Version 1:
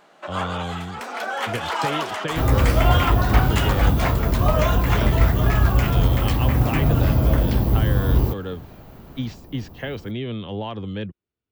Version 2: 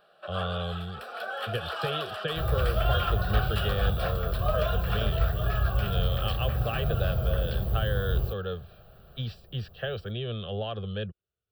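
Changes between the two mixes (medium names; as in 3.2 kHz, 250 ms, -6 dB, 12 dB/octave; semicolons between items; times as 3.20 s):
first sound -5.5 dB; second sound -8.0 dB; master: add static phaser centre 1.4 kHz, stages 8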